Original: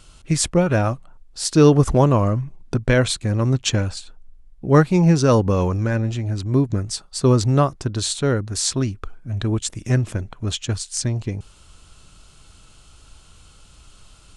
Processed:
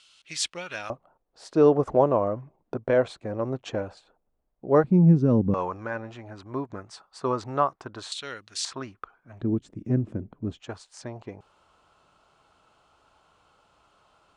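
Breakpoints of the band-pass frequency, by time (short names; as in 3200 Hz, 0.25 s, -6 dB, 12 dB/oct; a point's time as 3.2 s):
band-pass, Q 1.4
3400 Hz
from 0.9 s 620 Hz
from 4.84 s 210 Hz
from 5.54 s 1000 Hz
from 8.12 s 3200 Hz
from 8.65 s 1100 Hz
from 9.41 s 260 Hz
from 10.6 s 810 Hz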